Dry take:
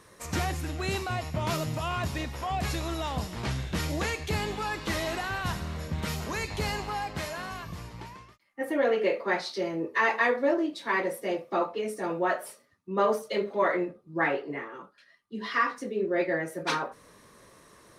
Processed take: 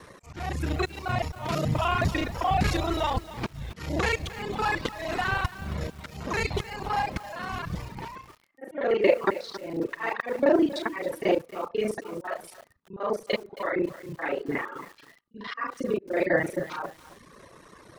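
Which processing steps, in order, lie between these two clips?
local time reversal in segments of 33 ms; LPF 3600 Hz 6 dB/oct; auto swell 0.394 s; reverb removal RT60 1.1 s; lo-fi delay 0.271 s, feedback 35%, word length 8-bit, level -14.5 dB; gain +8.5 dB

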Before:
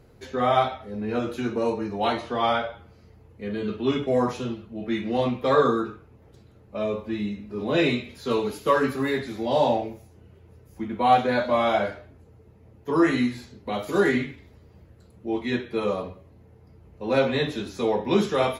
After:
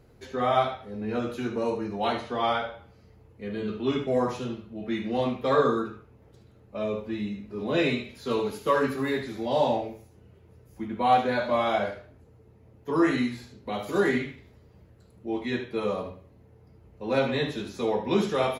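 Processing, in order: echo 75 ms -11 dB; gain -3 dB

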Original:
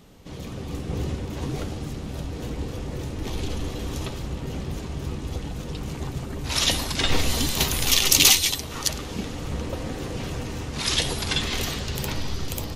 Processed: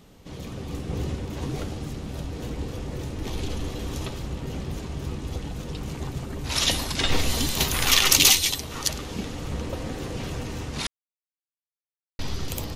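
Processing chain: 7.74–8.16 bell 1400 Hz +9 dB 1.6 oct; 10.87–12.19 mute; gain -1 dB

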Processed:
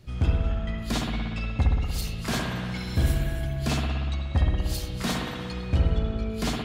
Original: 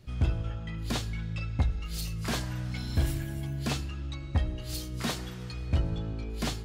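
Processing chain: spring tank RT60 1.7 s, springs 59 ms, chirp 45 ms, DRR -0.5 dB; gain +2.5 dB

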